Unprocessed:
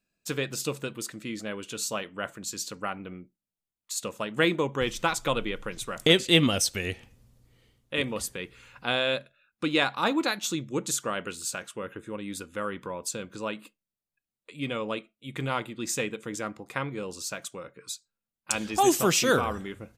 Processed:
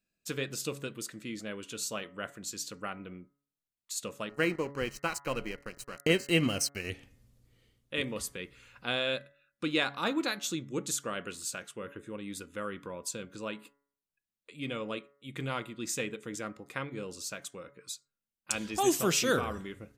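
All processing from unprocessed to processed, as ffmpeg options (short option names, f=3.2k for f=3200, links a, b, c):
-filter_complex "[0:a]asettb=1/sr,asplit=3[a][b][c];[a]atrim=end=4.294[d];[b]atrim=start=4.29:end=6.9,asetpts=PTS-STARTPTS,afade=t=in:d=0.004:c=qsin,afade=t=out:st=2.606:d=0.004:c=qsin,aeval=exprs='sgn(val(0))*max(abs(val(0))-0.0106,0)':c=same,asuperstop=centerf=3500:order=8:qfactor=4.8[e];[c]atrim=start=6.896[f];[d][e]acrossfade=d=0.004:c1=hsin:c2=qsin[g];[g][f]acrossfade=d=0.004:c1=qsin:c2=hsin,equalizer=f=880:w=1.9:g=-4.5,bandreject=f=141.1:t=h:w=4,bandreject=f=282.2:t=h:w=4,bandreject=f=423.3:t=h:w=4,bandreject=f=564.4:t=h:w=4,bandreject=f=705.5:t=h:w=4,bandreject=f=846.6:t=h:w=4,bandreject=f=987.7:t=h:w=4,bandreject=f=1.1288k:t=h:w=4,bandreject=f=1.2699k:t=h:w=4,bandreject=f=1.411k:t=h:w=4,bandreject=f=1.5521k:t=h:w=4,bandreject=f=1.6932k:t=h:w=4,bandreject=f=1.8343k:t=h:w=4,bandreject=f=1.9754k:t=h:w=4,bandreject=f=2.1165k:t=h:w=4,volume=-4dB"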